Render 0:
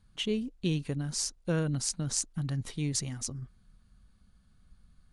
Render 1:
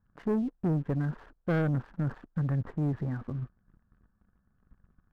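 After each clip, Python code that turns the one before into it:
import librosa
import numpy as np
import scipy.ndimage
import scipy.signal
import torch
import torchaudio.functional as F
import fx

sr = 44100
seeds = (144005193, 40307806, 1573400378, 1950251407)

y = scipy.signal.sosfilt(scipy.signal.cheby1(5, 1.0, 1700.0, 'lowpass', fs=sr, output='sos'), x)
y = fx.low_shelf(y, sr, hz=79.0, db=-8.0)
y = fx.leveller(y, sr, passes=2)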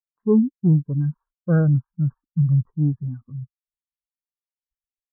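y = fx.peak_eq(x, sr, hz=1100.0, db=9.5, octaves=1.1)
y = fx.spectral_expand(y, sr, expansion=2.5)
y = y * librosa.db_to_amplitude(8.0)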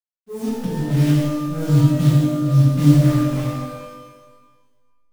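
y = fx.delta_hold(x, sr, step_db=-29.5)
y = fx.auto_swell(y, sr, attack_ms=381.0)
y = fx.rev_shimmer(y, sr, seeds[0], rt60_s=1.4, semitones=12, shimmer_db=-8, drr_db=-8.0)
y = y * librosa.db_to_amplitude(-1.0)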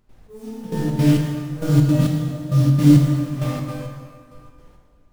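y = fx.dmg_noise_colour(x, sr, seeds[1], colour='brown', level_db=-47.0)
y = fx.step_gate(y, sr, bpm=167, pattern='.xx.....xx', floor_db=-12.0, edge_ms=4.5)
y = fx.rev_plate(y, sr, seeds[2], rt60_s=2.0, hf_ratio=0.75, predelay_ms=0, drr_db=2.0)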